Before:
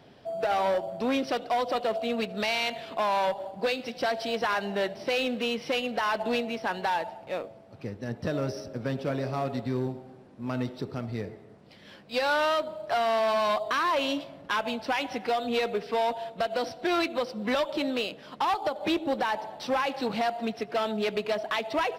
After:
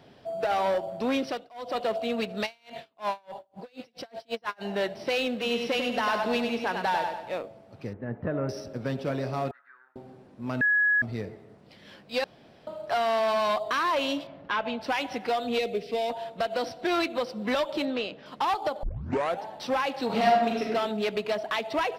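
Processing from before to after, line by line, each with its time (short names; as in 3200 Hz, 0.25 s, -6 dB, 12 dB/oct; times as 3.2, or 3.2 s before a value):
1.24–1.8 dip -24 dB, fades 0.26 s
2.45–4.63 dB-linear tremolo 2.5 Hz -> 7.5 Hz, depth 37 dB
5.31–7.38 feedback echo 97 ms, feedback 42%, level -5 dB
7.93–8.49 LPF 2000 Hz 24 dB/oct
9.51–9.96 Butterworth band-pass 1500 Hz, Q 3.5
10.61–11.02 bleep 1680 Hz -19.5 dBFS
12.24–12.67 room tone
14.27–14.81 LPF 3500 Hz
15.58–16.1 band shelf 1200 Hz -12.5 dB 1.3 oct
17.85–18.26 air absorption 120 m
18.83 tape start 0.61 s
20.05–20.68 reverb throw, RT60 0.94 s, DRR -2.5 dB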